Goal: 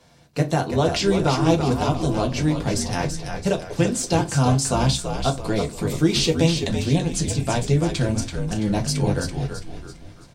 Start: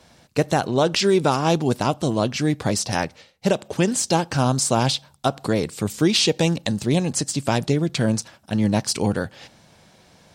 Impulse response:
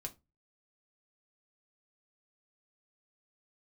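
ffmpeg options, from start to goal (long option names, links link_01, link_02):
-filter_complex "[0:a]asettb=1/sr,asplit=3[link_01][link_02][link_03];[link_01]atrim=end=8.134[link_04];[link_02]atrim=start=8.13:end=8.71,asetpts=PTS-STARTPTS,afade=type=in:duration=0.004:curve=qsin,afade=type=out:start_time=0.576:duration=0.004:curve=qsin,asplit=2[link_05][link_06];[link_06]adelay=34,volume=-8.5dB[link_07];[link_05][link_07]amix=inputs=2:normalize=0,atrim=end_sample=25578[link_08];[link_03]atrim=start=8.706[link_09];[link_04][link_08]acrossfade=duration=0.004:curve1=hsin:curve2=qsin[link_10];[link_10][link_09]acrossfade=duration=0.004:curve1=qsin:curve2=hsin,asplit=6[link_11][link_12][link_13][link_14][link_15][link_16];[link_12]adelay=333,afreqshift=-68,volume=-6.5dB[link_17];[link_13]adelay=666,afreqshift=-136,volume=-14dB[link_18];[link_14]adelay=999,afreqshift=-204,volume=-21.6dB[link_19];[link_15]adelay=1332,afreqshift=-272,volume=-29.1dB[link_20];[link_16]adelay=1665,afreqshift=-340,volume=-36.6dB[link_21];[link_11][link_17][link_18][link_19][link_20][link_21]amix=inputs=6:normalize=0[link_22];[1:a]atrim=start_sample=2205,asetrate=41895,aresample=44100[link_23];[link_22][link_23]afir=irnorm=-1:irlink=0"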